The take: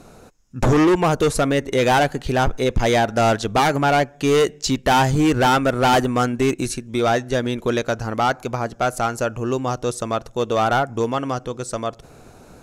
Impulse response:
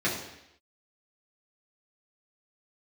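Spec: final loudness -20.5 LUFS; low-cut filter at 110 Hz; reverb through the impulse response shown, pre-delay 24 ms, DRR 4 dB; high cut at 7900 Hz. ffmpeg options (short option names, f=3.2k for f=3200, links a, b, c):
-filter_complex "[0:a]highpass=110,lowpass=7.9k,asplit=2[a][b];[1:a]atrim=start_sample=2205,adelay=24[c];[b][c]afir=irnorm=-1:irlink=0,volume=-15.5dB[d];[a][d]amix=inputs=2:normalize=0,volume=-2.5dB"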